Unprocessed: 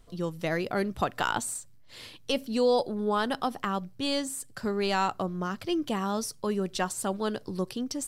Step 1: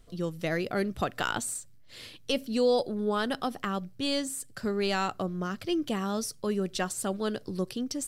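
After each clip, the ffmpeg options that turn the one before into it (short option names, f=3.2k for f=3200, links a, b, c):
-af "equalizer=f=930:w=2.8:g=-7"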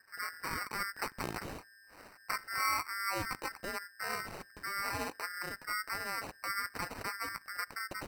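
-af "aeval=exprs='val(0)*sin(2*PI*1800*n/s)':c=same,acrusher=samples=13:mix=1:aa=0.000001,volume=-5.5dB"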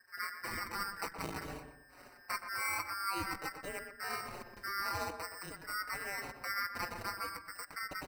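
-filter_complex "[0:a]asplit=2[a][b];[b]adelay=122,lowpass=f=1.7k:p=1,volume=-7dB,asplit=2[c][d];[d]adelay=122,lowpass=f=1.7k:p=1,volume=0.37,asplit=2[e][f];[f]adelay=122,lowpass=f=1.7k:p=1,volume=0.37,asplit=2[g][h];[h]adelay=122,lowpass=f=1.7k:p=1,volume=0.37[i];[a][c][e][g][i]amix=inputs=5:normalize=0,asplit=2[j][k];[k]adelay=5.1,afreqshift=-0.47[l];[j][l]amix=inputs=2:normalize=1,volume=1dB"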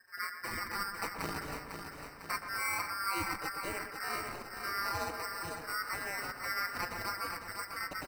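-af "aecho=1:1:501|1002|1503|2004|2505|3006|3507:0.447|0.241|0.13|0.0703|0.038|0.0205|0.0111,volume=1.5dB"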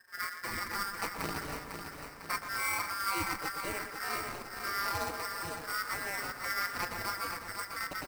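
-af "acrusher=bits=2:mode=log:mix=0:aa=0.000001,volume=1dB"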